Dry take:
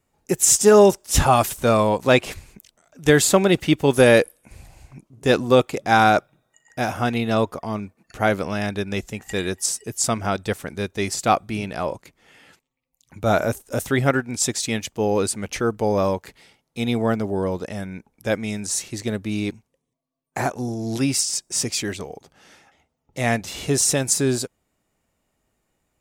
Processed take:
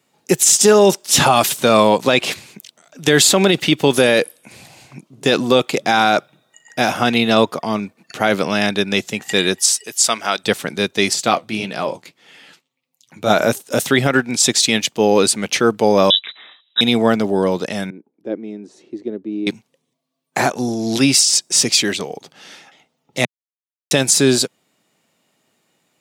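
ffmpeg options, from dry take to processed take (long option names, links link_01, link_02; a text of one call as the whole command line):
ffmpeg -i in.wav -filter_complex "[0:a]asettb=1/sr,asplit=3[link_01][link_02][link_03];[link_01]atrim=end=9.594[link_04];[link_02]atrim=start=9.59:end=10.44,asetpts=PTS-STARTPTS,afade=type=in:duration=0.004:curve=qsin,afade=type=out:start_time=0.846:duration=0.004:curve=qsin,highpass=frequency=990:poles=1[link_05];[link_03]atrim=start=10.436[link_06];[link_04][link_05]acrossfade=duration=0.004:curve1=hsin:curve2=qsin[link_07];[link_07][link_06]acrossfade=duration=0.004:curve1=qsin:curve2=hsin,asettb=1/sr,asplit=3[link_08][link_09][link_10];[link_08]atrim=end=11.134[link_11];[link_09]atrim=start=11.13:end=13.3,asetpts=PTS-STARTPTS,afade=type=in:duration=0.004:curve=qsin,afade=type=out:start_time=2.166:duration=0.004:curve=qsin,flanger=delay=4:depth=9.5:regen=-49:speed=1.7:shape=triangular[link_12];[link_10]atrim=start=13.296[link_13];[link_11][link_12]acrossfade=duration=0.004:curve1=hsin:curve2=qsin[link_14];[link_14][link_13]acrossfade=duration=0.004:curve1=qsin:curve2=hsin,asettb=1/sr,asplit=3[link_15][link_16][link_17];[link_15]atrim=end=16.104[link_18];[link_16]atrim=start=16.1:end=16.81,asetpts=PTS-STARTPTS,afade=type=in:duration=0.004:curve=qsin,afade=type=out:start_time=0.706:duration=0.004:curve=qsin,lowpass=frequency=3400:width_type=q:width=0.5098,lowpass=frequency=3400:width_type=q:width=0.6013,lowpass=frequency=3400:width_type=q:width=0.9,lowpass=frequency=3400:width_type=q:width=2.563,afreqshift=-4000[link_19];[link_17]atrim=start=16.806[link_20];[link_18][link_19]acrossfade=duration=0.004:curve1=hsin:curve2=qsin[link_21];[link_21][link_20]acrossfade=duration=0.004:curve1=qsin:curve2=hsin,asettb=1/sr,asplit=3[link_22][link_23][link_24];[link_22]atrim=end=17.904[link_25];[link_23]atrim=start=17.9:end=19.47,asetpts=PTS-STARTPTS,afade=type=in:duration=0.004:curve=qsin,afade=type=out:start_time=1.566:duration=0.004:curve=qsin,bandpass=frequency=340:width_type=q:width=3.4[link_26];[link_24]atrim=start=19.466[link_27];[link_25][link_26]acrossfade=duration=0.004:curve1=hsin:curve2=qsin[link_28];[link_28][link_27]acrossfade=duration=0.004:curve1=qsin:curve2=hsin,asplit=3[link_29][link_30][link_31];[link_29]atrim=end=23.25,asetpts=PTS-STARTPTS,afade=type=out:start_time=23.246:duration=0.004:curve=hsin[link_32];[link_30]atrim=start=23.25:end=23.91,asetpts=PTS-STARTPTS,volume=0[link_33];[link_31]atrim=start=23.91,asetpts=PTS-STARTPTS,afade=type=in:duration=0.004:curve=hsin[link_34];[link_32][link_33][link_34]concat=n=3:v=0:a=1,highpass=frequency=140:width=0.5412,highpass=frequency=140:width=1.3066,equalizer=frequency=3700:width_type=o:width=1.3:gain=8,alimiter=level_in=8dB:limit=-1dB:release=50:level=0:latency=1,volume=-1dB" out.wav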